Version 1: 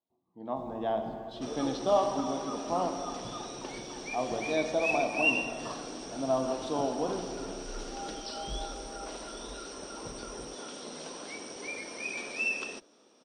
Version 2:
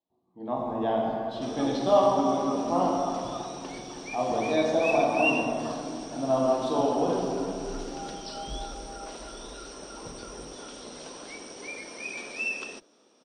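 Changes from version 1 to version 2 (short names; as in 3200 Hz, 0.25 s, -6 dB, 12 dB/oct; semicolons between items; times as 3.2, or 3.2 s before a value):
speech: send +10.0 dB; first sound: send on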